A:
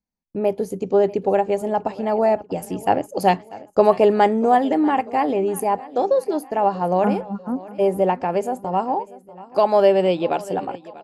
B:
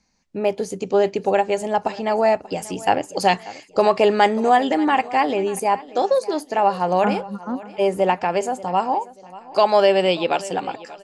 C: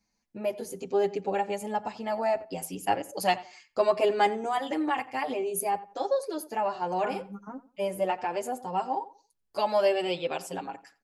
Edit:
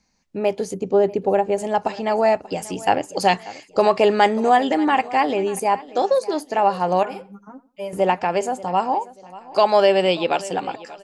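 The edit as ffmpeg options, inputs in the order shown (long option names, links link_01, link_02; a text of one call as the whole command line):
ffmpeg -i take0.wav -i take1.wav -i take2.wav -filter_complex "[1:a]asplit=3[link_01][link_02][link_03];[link_01]atrim=end=0.742[link_04];[0:a]atrim=start=0.738:end=1.582[link_05];[link_02]atrim=start=1.578:end=7.032[link_06];[2:a]atrim=start=7.028:end=7.932[link_07];[link_03]atrim=start=7.928[link_08];[link_04][link_05]acrossfade=duration=0.004:curve1=hsin:curve2=hsin[link_09];[link_09][link_06]acrossfade=duration=0.004:curve1=hsin:curve2=hsin[link_10];[link_10][link_07]acrossfade=duration=0.004:curve1=hsin:curve2=hsin[link_11];[link_11][link_08]acrossfade=duration=0.004:curve1=hsin:curve2=hsin" out.wav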